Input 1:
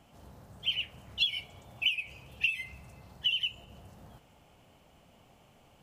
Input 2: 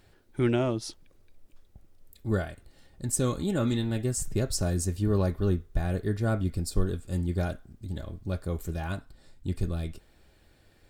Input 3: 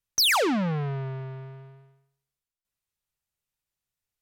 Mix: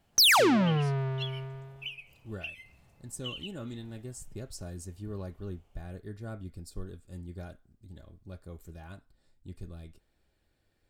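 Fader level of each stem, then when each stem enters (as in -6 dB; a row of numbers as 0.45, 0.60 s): -11.5, -13.5, +1.0 dB; 0.00, 0.00, 0.00 s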